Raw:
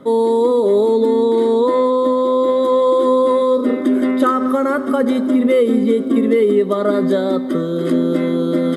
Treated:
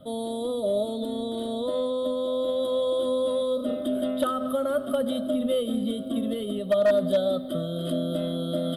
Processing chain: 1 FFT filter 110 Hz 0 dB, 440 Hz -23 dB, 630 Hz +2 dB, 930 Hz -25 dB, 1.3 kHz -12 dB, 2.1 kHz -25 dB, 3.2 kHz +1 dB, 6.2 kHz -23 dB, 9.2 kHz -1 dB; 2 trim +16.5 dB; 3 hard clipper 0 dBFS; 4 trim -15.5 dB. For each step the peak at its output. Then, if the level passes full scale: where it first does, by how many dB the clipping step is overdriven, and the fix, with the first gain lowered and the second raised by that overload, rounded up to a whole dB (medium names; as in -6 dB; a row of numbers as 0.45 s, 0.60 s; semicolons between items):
-10.5 dBFS, +6.0 dBFS, 0.0 dBFS, -15.5 dBFS; step 2, 6.0 dB; step 2 +10.5 dB, step 4 -9.5 dB